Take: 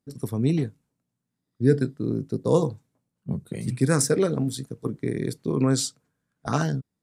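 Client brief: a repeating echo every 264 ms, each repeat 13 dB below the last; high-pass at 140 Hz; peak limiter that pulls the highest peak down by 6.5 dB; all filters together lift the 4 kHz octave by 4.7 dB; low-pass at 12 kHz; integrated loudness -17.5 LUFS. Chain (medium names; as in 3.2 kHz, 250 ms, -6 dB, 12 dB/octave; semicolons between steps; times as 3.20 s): high-pass 140 Hz; low-pass 12 kHz; peaking EQ 4 kHz +6 dB; peak limiter -14 dBFS; feedback delay 264 ms, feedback 22%, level -13 dB; trim +10 dB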